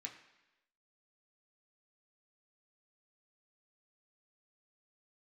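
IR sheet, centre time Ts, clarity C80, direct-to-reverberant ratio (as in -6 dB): 21 ms, 11.0 dB, 0.0 dB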